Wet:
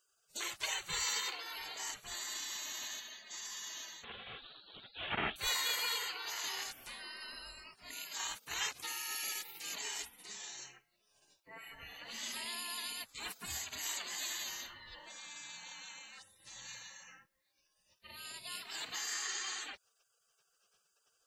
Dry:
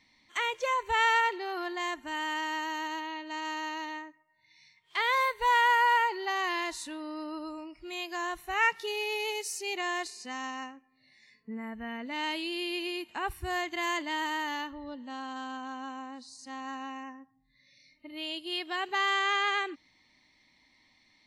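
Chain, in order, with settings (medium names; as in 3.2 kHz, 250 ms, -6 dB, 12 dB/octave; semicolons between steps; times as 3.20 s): 4.04–5.36 s: one-bit delta coder 16 kbps, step -34 dBFS; spectral gate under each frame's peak -25 dB weak; trim +10.5 dB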